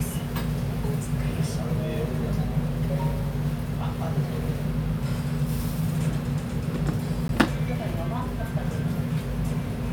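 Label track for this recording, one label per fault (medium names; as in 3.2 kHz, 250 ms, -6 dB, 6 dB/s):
7.280000	7.290000	dropout 12 ms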